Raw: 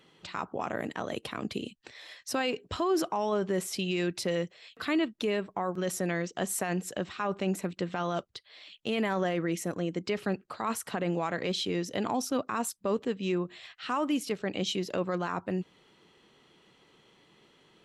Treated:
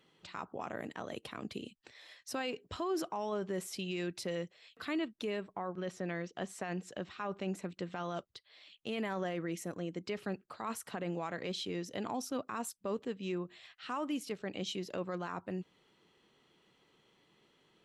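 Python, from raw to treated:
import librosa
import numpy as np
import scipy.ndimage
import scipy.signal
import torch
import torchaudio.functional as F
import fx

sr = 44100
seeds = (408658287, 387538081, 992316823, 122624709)

y = fx.lowpass(x, sr, hz=fx.line((5.52, 3400.0), (7.67, 8600.0)), slope=12, at=(5.52, 7.67), fade=0.02)
y = y * librosa.db_to_amplitude(-7.5)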